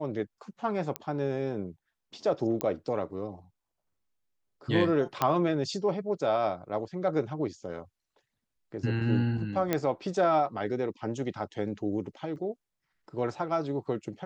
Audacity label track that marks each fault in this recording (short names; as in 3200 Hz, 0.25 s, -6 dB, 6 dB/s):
0.960000	0.960000	pop -15 dBFS
2.610000	2.610000	pop -13 dBFS
5.220000	5.220000	pop -11 dBFS
9.730000	9.730000	pop -12 dBFS
12.360000	12.360000	gap 2.3 ms